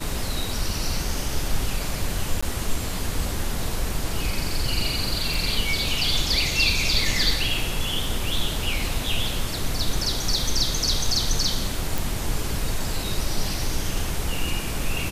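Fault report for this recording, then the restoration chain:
2.41–2.42 gap 15 ms
5.34 pop
11.98 pop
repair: de-click; interpolate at 2.41, 15 ms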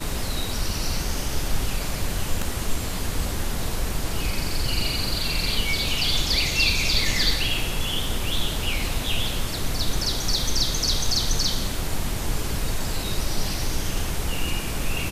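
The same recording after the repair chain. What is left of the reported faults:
none

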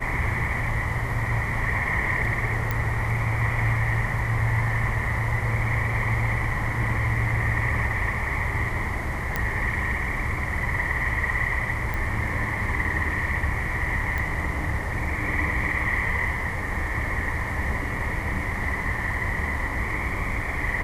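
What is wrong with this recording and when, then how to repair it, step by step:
2.71 pop -12 dBFS
9.36 pop -11 dBFS
11.94 pop
14.18 pop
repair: de-click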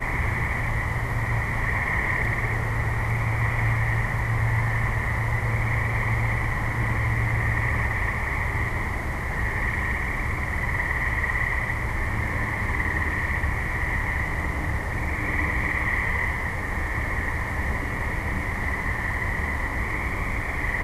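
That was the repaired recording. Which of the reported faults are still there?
none

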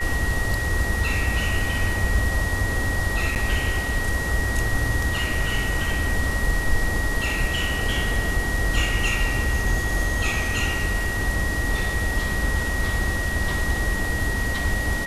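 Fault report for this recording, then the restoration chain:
tone 1900 Hz -27 dBFS
3.35–3.36 gap 9.4 ms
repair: notch 1900 Hz, Q 30; interpolate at 3.35, 9.4 ms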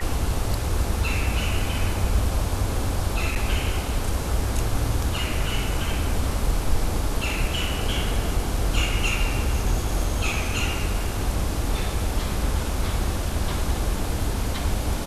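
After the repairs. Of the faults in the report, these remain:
none

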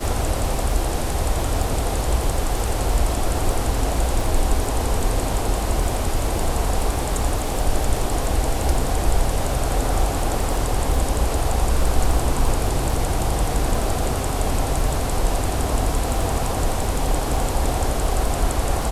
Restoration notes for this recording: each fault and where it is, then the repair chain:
crackle 26/s -25 dBFS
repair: de-click

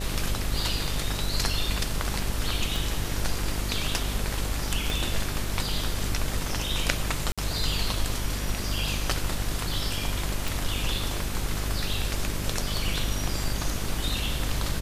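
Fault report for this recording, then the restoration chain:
buzz 50 Hz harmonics 13 -32 dBFS
2.76 pop
4.9 pop
7.32–7.38 gap 56 ms
10.48 pop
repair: de-click; de-hum 50 Hz, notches 13; interpolate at 7.32, 56 ms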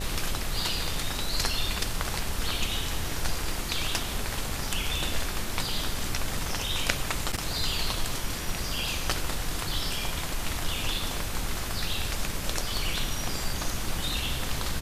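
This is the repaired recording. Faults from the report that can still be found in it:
2.76 pop

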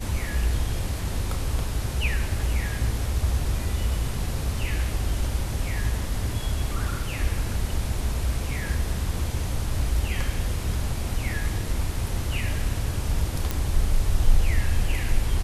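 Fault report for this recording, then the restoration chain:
13.51 pop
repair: de-click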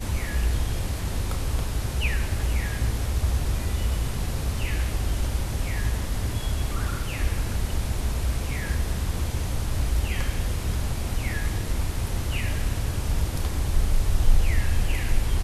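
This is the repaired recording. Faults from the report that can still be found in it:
none

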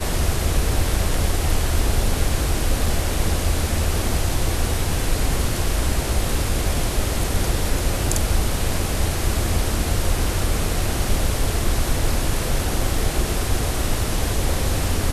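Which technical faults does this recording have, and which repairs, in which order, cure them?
2.86 gap 2.6 ms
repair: interpolate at 2.86, 2.6 ms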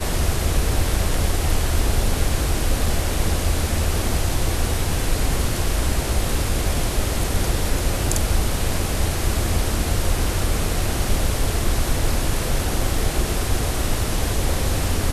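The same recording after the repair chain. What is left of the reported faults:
none

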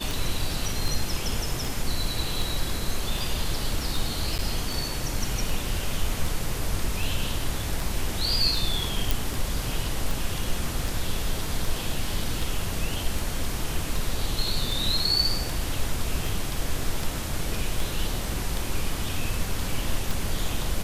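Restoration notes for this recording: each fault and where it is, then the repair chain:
tick 78 rpm
4.38–4.39 gap 9.1 ms
9.11 pop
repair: de-click; interpolate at 4.38, 9.1 ms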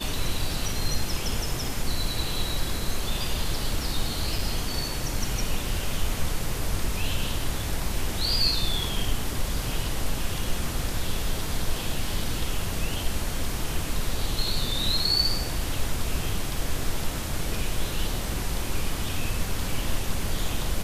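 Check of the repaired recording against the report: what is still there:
none

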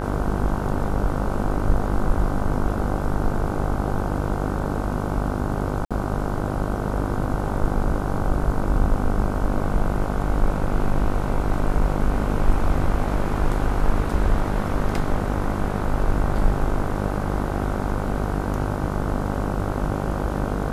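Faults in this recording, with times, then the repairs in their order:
buzz 50 Hz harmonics 31 -26 dBFS
5.85–5.91 gap 56 ms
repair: de-hum 50 Hz, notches 31; interpolate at 5.85, 56 ms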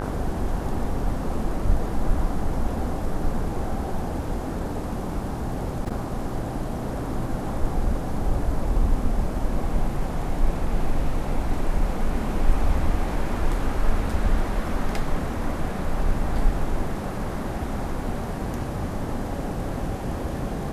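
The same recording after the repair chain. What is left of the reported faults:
none

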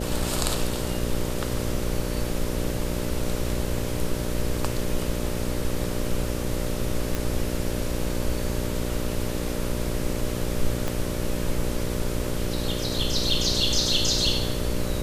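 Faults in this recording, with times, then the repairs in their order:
buzz 60 Hz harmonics 10 -30 dBFS
7.15 pop
10.88 pop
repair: de-click; de-hum 60 Hz, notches 10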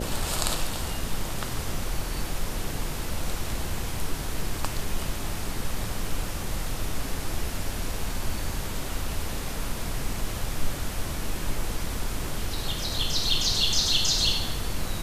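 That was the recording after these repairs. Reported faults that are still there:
10.88 pop

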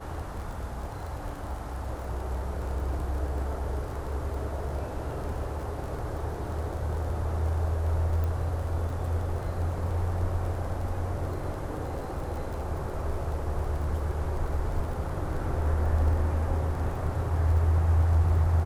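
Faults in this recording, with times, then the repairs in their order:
crackle 25/s -36 dBFS
8.24 pop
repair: de-click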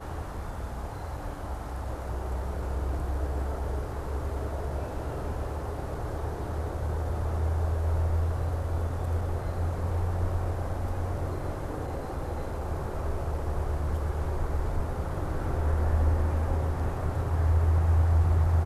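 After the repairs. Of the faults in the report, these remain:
none

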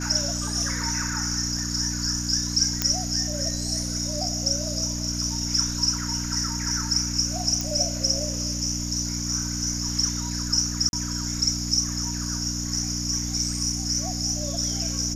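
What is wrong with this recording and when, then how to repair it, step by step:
hum 60 Hz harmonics 5 -31 dBFS
2.82 pop -5 dBFS
7.61 pop
10.89–10.93 gap 41 ms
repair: de-click; de-hum 60 Hz, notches 5; interpolate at 10.89, 41 ms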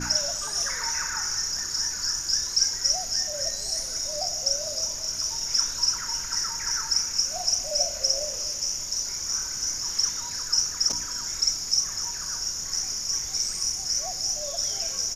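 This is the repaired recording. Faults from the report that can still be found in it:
none

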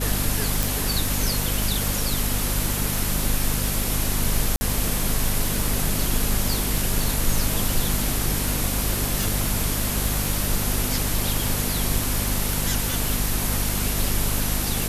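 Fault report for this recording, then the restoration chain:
crackle 24/s -26 dBFS
hum 50 Hz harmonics 5 -28 dBFS
0.63 pop
4.56–4.61 gap 50 ms
9.23 pop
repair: de-click; de-hum 50 Hz, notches 5; interpolate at 4.56, 50 ms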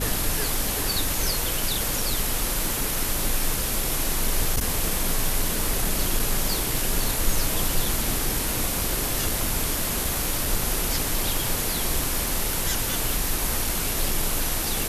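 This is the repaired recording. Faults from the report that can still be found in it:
none

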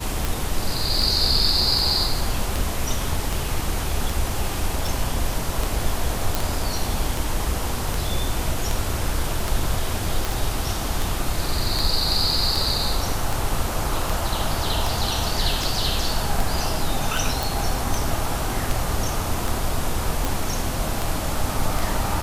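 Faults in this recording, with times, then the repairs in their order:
tick 78 rpm
6.35 pop
10.32 pop
17.43 pop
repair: de-click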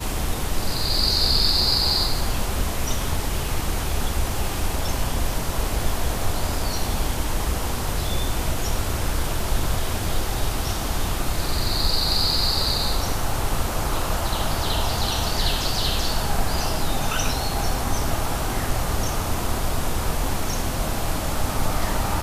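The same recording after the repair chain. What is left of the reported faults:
10.32 pop

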